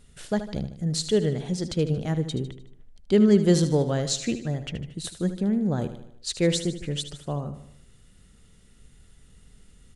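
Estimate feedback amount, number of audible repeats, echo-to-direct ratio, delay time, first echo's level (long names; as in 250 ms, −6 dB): 51%, 5, −10.0 dB, 76 ms, −11.5 dB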